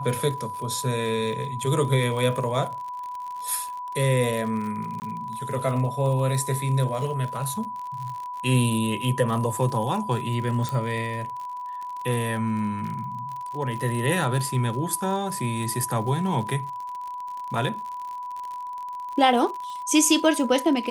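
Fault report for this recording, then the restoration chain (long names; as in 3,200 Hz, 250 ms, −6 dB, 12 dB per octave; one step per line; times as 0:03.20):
surface crackle 55 per second −32 dBFS
whistle 990 Hz −31 dBFS
0:05.00–0:05.02: drop-out 19 ms
0:10.69: click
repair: click removal
notch filter 990 Hz, Q 30
repair the gap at 0:05.00, 19 ms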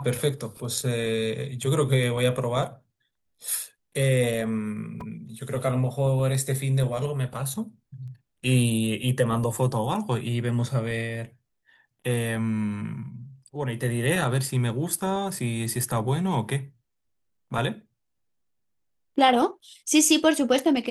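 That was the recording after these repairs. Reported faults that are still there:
none of them is left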